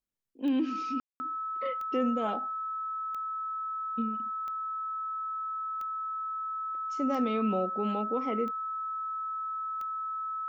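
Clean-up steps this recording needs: de-click; band-stop 1.3 kHz, Q 30; room tone fill 1.00–1.20 s

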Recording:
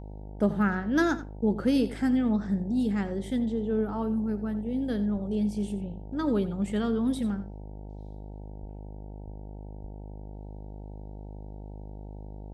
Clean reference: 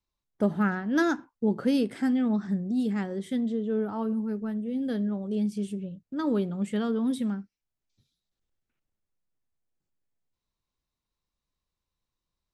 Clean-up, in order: de-hum 51.2 Hz, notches 18; de-plosive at 5.13/8.60/9.24/9.81 s; inverse comb 87 ms -14.5 dB

